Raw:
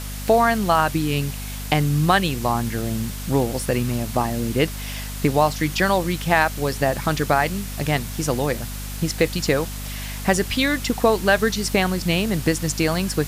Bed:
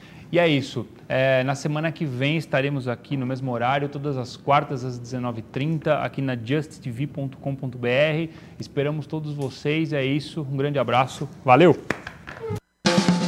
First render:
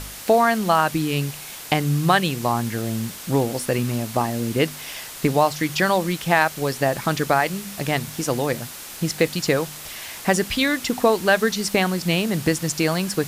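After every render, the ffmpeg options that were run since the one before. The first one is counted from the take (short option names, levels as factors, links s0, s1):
-af "bandreject=f=50:t=h:w=4,bandreject=f=100:t=h:w=4,bandreject=f=150:t=h:w=4,bandreject=f=200:t=h:w=4,bandreject=f=250:t=h:w=4"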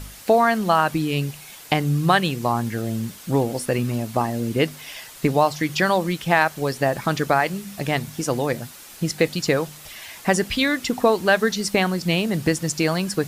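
-af "afftdn=nr=7:nf=-37"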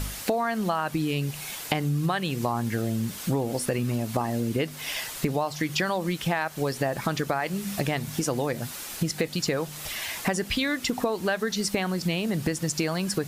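-filter_complex "[0:a]asplit=2[s0][s1];[s1]alimiter=limit=0.2:level=0:latency=1,volume=0.841[s2];[s0][s2]amix=inputs=2:normalize=0,acompressor=threshold=0.0631:ratio=5"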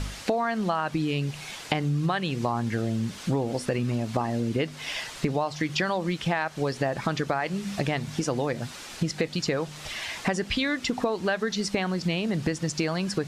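-af "lowpass=6100"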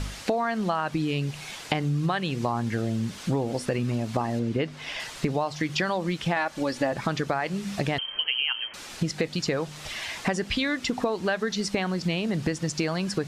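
-filter_complex "[0:a]asettb=1/sr,asplit=3[s0][s1][s2];[s0]atrim=end=4.394[s3];[s1]atrim=start=4.39:end=5,asetpts=PTS-STARTPTS,afade=t=in:d=0.004:c=qsin,afade=t=out:st=0.606:d=0.004:c=qsin,lowpass=f=3600:p=1[s4];[s2]atrim=start=4.996[s5];[s3][s4]acrossfade=d=0.004:c1=hsin:c2=qsin[s6];[s6][s5]acrossfade=d=0.004:c1=qsin:c2=hsin,asettb=1/sr,asplit=3[s7][s8][s9];[s7]atrim=end=6.364[s10];[s8]atrim=start=6.36:end=6.92,asetpts=PTS-STARTPTS,afade=t=in:d=0.004:c=qsin,afade=t=out:st=0.556:d=0.004:c=qsin,aecho=1:1:3.5:0.65,atrim=end_sample=24696[s11];[s9]atrim=start=6.916[s12];[s10][s11]acrossfade=d=0.004:c1=hsin:c2=qsin[s13];[s13][s12]acrossfade=d=0.004:c1=qsin:c2=hsin,asettb=1/sr,asplit=3[s14][s15][s16];[s14]atrim=end=7.984[s17];[s15]atrim=start=7.98:end=8.74,asetpts=PTS-STARTPTS,afade=t=in:d=0.004:c=qsin,afade=t=out:st=0.756:d=0.004:c=qsin,lowpass=f=2800:t=q:w=0.5098,lowpass=f=2800:t=q:w=0.6013,lowpass=f=2800:t=q:w=0.9,lowpass=f=2800:t=q:w=2.563,afreqshift=-3300[s18];[s16]atrim=start=8.736[s19];[s17][s18]acrossfade=d=0.004:c1=hsin:c2=qsin[s20];[s20][s19]acrossfade=d=0.004:c1=qsin:c2=hsin"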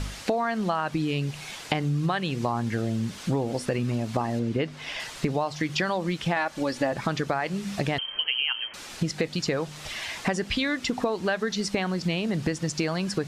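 -af anull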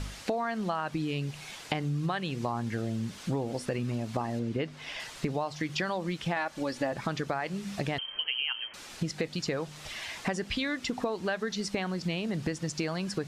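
-af "volume=0.562"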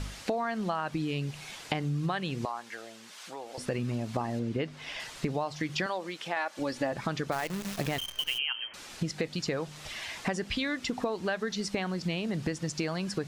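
-filter_complex "[0:a]asettb=1/sr,asplit=3[s0][s1][s2];[s0]atrim=end=2.454[s3];[s1]atrim=start=2.45:end=3.58,asetpts=PTS-STARTPTS,afade=t=in:d=0.004:c=qsin,afade=t=out:st=1.126:d=0.004:c=qsin,highpass=750[s4];[s2]atrim=start=3.576[s5];[s3][s4]acrossfade=d=0.004:c1=hsin:c2=qsin[s6];[s6][s5]acrossfade=d=0.004:c1=qsin:c2=hsin,asettb=1/sr,asplit=3[s7][s8][s9];[s7]atrim=end=5.864[s10];[s8]atrim=start=5.86:end=6.59,asetpts=PTS-STARTPTS,afade=t=in:d=0.004:c=qsin,afade=t=out:st=0.726:d=0.004:c=qsin,highpass=380[s11];[s9]atrim=start=6.586[s12];[s10][s11]acrossfade=d=0.004:c1=hsin:c2=qsin[s13];[s13][s12]acrossfade=d=0.004:c1=qsin:c2=hsin,asplit=3[s14][s15][s16];[s14]afade=t=out:st=7.31:d=0.02[s17];[s15]acrusher=bits=7:dc=4:mix=0:aa=0.000001,afade=t=in:st=7.31:d=0.02,afade=t=out:st=8.37:d=0.02[s18];[s16]afade=t=in:st=8.37:d=0.02[s19];[s17][s18][s19]amix=inputs=3:normalize=0"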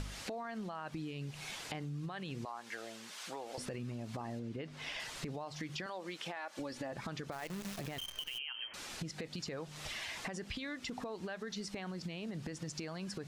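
-af "alimiter=level_in=1.12:limit=0.0631:level=0:latency=1:release=24,volume=0.891,acompressor=threshold=0.0112:ratio=6"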